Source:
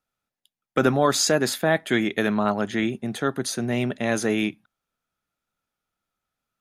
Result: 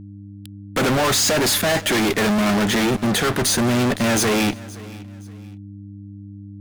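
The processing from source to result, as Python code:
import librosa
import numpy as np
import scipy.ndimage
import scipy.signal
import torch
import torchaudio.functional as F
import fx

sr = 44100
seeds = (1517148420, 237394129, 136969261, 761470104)

y = fx.fuzz(x, sr, gain_db=42.0, gate_db=-47.0)
y = fx.dmg_buzz(y, sr, base_hz=100.0, harmonics=3, level_db=-34.0, tilt_db=-4, odd_only=False)
y = fx.echo_feedback(y, sr, ms=520, feedback_pct=31, wet_db=-20.5)
y = F.gain(torch.from_numpy(y), -4.0).numpy()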